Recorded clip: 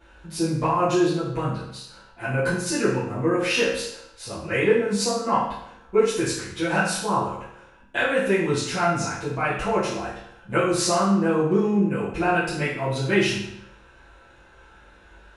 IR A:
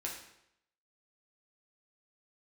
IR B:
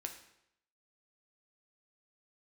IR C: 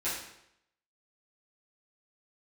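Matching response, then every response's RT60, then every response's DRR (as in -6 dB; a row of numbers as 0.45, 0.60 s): C; 0.75, 0.75, 0.75 s; -3.0, 3.5, -12.5 dB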